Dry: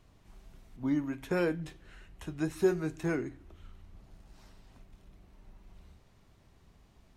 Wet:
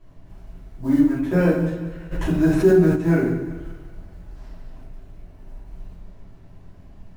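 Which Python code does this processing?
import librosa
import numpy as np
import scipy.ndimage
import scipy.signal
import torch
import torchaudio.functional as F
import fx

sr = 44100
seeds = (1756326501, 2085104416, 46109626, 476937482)

p1 = fx.high_shelf(x, sr, hz=2100.0, db=-11.0)
p2 = fx.rider(p1, sr, range_db=10, speed_s=0.5)
p3 = p1 + F.gain(torch.from_numpy(p2), 1.5).numpy()
p4 = fx.quant_float(p3, sr, bits=4)
p5 = p4 + fx.echo_thinned(p4, sr, ms=190, feedback_pct=54, hz=260.0, wet_db=-14.0, dry=0)
p6 = fx.room_shoebox(p5, sr, seeds[0], volume_m3=140.0, walls='mixed', distance_m=2.9)
p7 = fx.env_flatten(p6, sr, amount_pct=50, at=(2.11, 2.95), fade=0.02)
y = F.gain(torch.from_numpy(p7), -5.5).numpy()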